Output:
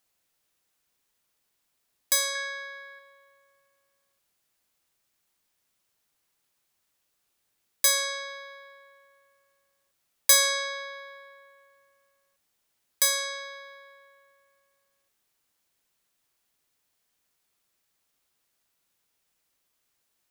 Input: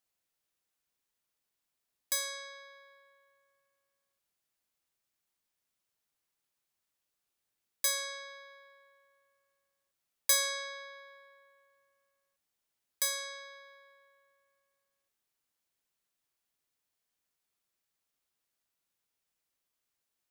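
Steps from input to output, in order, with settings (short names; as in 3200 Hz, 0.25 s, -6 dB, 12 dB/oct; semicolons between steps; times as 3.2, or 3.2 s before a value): 2.35–2.99 bell 1800 Hz +9.5 dB 0.47 oct; in parallel at -11.5 dB: soft clip -25 dBFS, distortion -11 dB; on the sum: gain +7 dB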